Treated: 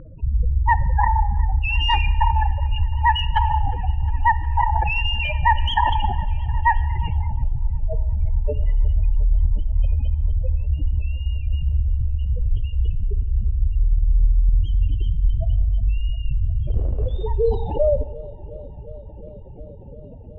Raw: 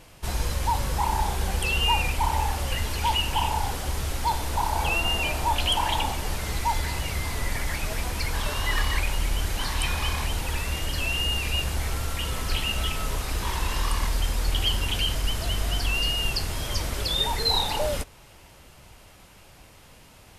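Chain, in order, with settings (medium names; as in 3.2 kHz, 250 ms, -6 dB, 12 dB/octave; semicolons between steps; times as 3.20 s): comb filter that takes the minimum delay 0.34 ms; spectral gate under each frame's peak -10 dB strong; treble shelf 3.1 kHz +10 dB; in parallel at 0 dB: compression 6:1, threshold -38 dBFS, peak gain reduction 19.5 dB; on the sum: resampled via 11.025 kHz; sine folder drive 4 dB, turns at -9.5 dBFS; 16.67–17.28 s: short-mantissa float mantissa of 2-bit; feedback echo behind a low-pass 358 ms, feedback 81%, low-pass 2.3 kHz, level -20 dB; Schroeder reverb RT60 1.2 s, combs from 27 ms, DRR 15 dB; low-pass sweep 1.4 kHz -> 490 Hz, 6.94–7.55 s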